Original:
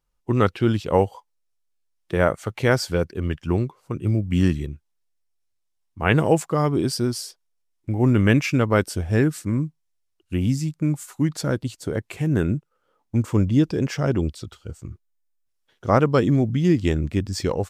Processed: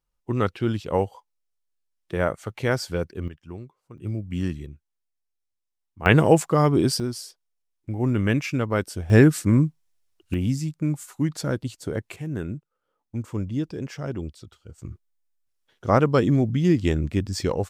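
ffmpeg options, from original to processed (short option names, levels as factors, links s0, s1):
-af "asetnsamples=n=441:p=0,asendcmd='3.28 volume volume -16dB;3.98 volume volume -8dB;6.06 volume volume 2dB;7 volume volume -5dB;9.1 volume volume 5dB;10.34 volume volume -2.5dB;12.16 volume volume -9dB;14.78 volume volume -1dB',volume=0.596"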